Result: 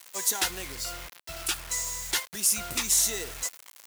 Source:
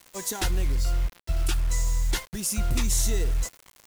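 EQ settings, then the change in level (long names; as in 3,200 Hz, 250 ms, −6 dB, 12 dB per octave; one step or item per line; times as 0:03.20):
high-pass filter 1,000 Hz 6 dB per octave
high-shelf EQ 11,000 Hz +3.5 dB
+4.0 dB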